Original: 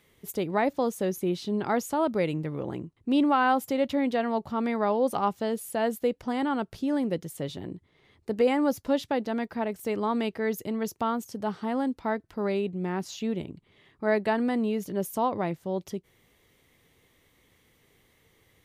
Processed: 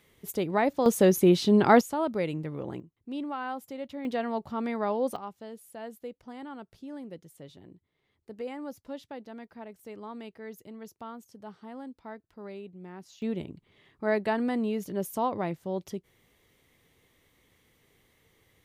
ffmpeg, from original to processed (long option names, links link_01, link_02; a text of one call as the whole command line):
ffmpeg -i in.wav -af "asetnsamples=nb_out_samples=441:pad=0,asendcmd='0.86 volume volume 8dB;1.81 volume volume -3dB;2.8 volume volume -12dB;4.05 volume volume -3.5dB;5.16 volume volume -14dB;13.22 volume volume -2dB',volume=0dB" out.wav